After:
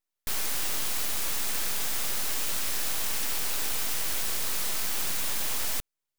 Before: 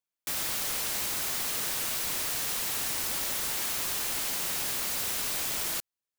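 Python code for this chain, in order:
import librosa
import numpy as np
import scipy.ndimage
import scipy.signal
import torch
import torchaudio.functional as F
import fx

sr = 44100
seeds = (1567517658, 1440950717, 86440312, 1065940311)

y = np.abs(x)
y = y * librosa.db_to_amplitude(4.5)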